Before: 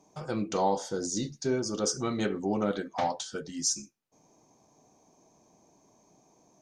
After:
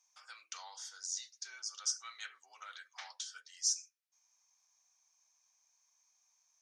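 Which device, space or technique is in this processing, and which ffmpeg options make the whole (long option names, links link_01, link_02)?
headphones lying on a table: -af "highpass=frequency=1400:width=0.5412,highpass=frequency=1400:width=1.3066,equalizer=frequency=5600:width_type=o:width=0.36:gain=4.5,volume=-6.5dB"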